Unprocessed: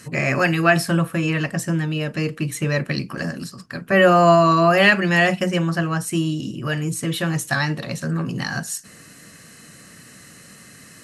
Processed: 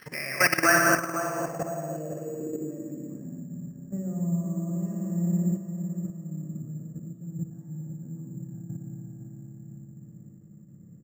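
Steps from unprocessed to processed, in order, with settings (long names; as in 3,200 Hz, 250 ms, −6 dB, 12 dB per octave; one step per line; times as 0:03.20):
bass and treble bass −9 dB, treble +13 dB
in parallel at +1.5 dB: downward compressor 6 to 1, threshold −30 dBFS, peak gain reduction 19.5 dB
on the sum: spring reverb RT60 3.4 s, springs 58 ms, chirp 60 ms, DRR −2 dB
output level in coarse steps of 15 dB
on a send: repeating echo 507 ms, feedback 45%, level −8.5 dB
on the sum: low-pass filter sweep 2,000 Hz → 160 Hz, 0:00.48–0:03.73
bad sample-rate conversion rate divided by 6×, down none, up hold
level −7.5 dB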